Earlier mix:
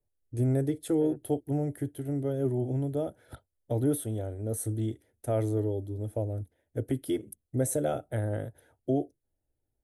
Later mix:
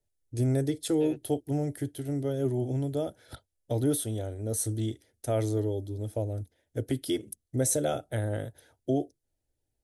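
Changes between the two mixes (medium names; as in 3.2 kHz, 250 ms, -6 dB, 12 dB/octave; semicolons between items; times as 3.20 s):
second voice: remove low-pass 1.6 kHz 24 dB/octave; master: add peaking EQ 5 kHz +14 dB 1.5 oct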